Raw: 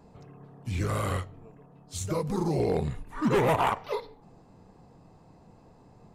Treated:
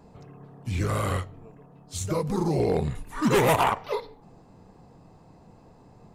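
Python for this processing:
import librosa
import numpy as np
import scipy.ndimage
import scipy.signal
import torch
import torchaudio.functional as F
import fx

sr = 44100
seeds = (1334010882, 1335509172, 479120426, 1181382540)

y = fx.high_shelf(x, sr, hz=3500.0, db=11.0, at=(2.95, 3.64))
y = F.gain(torch.from_numpy(y), 2.5).numpy()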